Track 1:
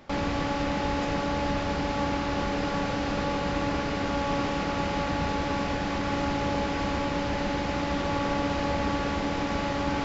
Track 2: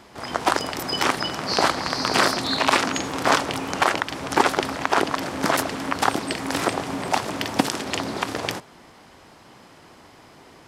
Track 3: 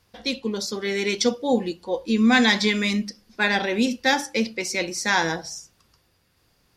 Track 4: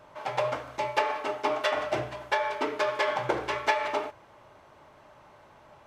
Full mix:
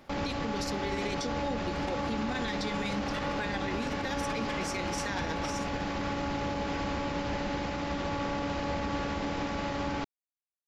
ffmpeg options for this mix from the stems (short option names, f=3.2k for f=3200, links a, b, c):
-filter_complex "[0:a]volume=-3.5dB[a];[2:a]volume=-3dB[b];[3:a]highpass=1k,adelay=1500,volume=-3dB[c];[b][c]amix=inputs=2:normalize=0,tremolo=f=16:d=0.55,acompressor=threshold=-29dB:ratio=6,volume=0dB[d];[a][d]amix=inputs=2:normalize=0,alimiter=limit=-23.5dB:level=0:latency=1:release=41"